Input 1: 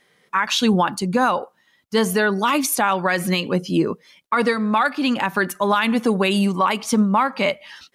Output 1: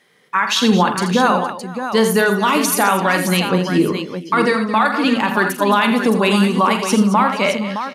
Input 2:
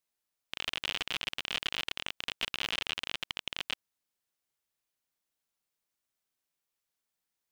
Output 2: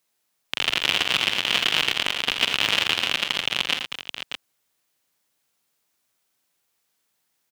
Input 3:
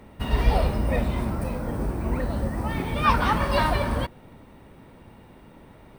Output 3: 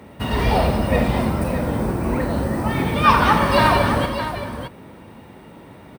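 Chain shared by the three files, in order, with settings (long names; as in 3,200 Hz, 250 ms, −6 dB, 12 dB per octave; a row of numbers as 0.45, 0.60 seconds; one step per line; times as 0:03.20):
high-pass filter 88 Hz 12 dB per octave
on a send: multi-tap delay 45/83/114/219/466/616 ms −10.5/−9/−20/−12.5/−20/−9 dB
on the sum: normalise the peak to −2 dBFS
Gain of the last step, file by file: +2.5, +11.5, +6.0 decibels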